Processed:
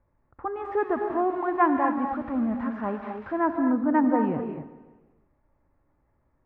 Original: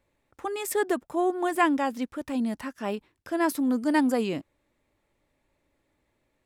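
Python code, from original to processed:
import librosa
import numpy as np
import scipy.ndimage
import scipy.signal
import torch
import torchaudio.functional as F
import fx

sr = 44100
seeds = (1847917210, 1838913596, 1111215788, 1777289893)

y = fx.crossing_spikes(x, sr, level_db=-20.5, at=(0.64, 3.4))
y = scipy.signal.sosfilt(scipy.signal.butter(4, 1300.0, 'lowpass', fs=sr, output='sos'), y)
y = fx.peak_eq(y, sr, hz=420.0, db=-10.0, octaves=2.5)
y = fx.echo_feedback(y, sr, ms=146, feedback_pct=54, wet_db=-17)
y = fx.rev_gated(y, sr, seeds[0], gate_ms=280, shape='rising', drr_db=5.0)
y = F.gain(torch.from_numpy(y), 8.5).numpy()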